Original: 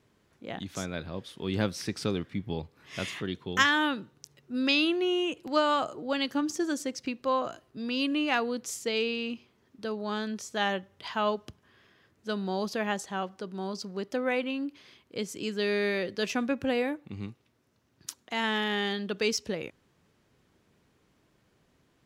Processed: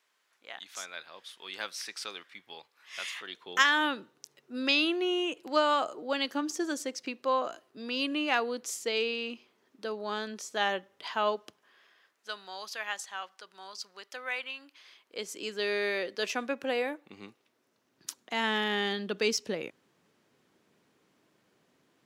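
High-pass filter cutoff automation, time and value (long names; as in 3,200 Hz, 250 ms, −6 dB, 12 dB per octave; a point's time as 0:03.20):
0:03.13 1,100 Hz
0:03.85 330 Hz
0:11.28 330 Hz
0:12.51 1,200 Hz
0:14.59 1,200 Hz
0:15.31 410 Hz
0:17.20 410 Hz
0:18.19 200 Hz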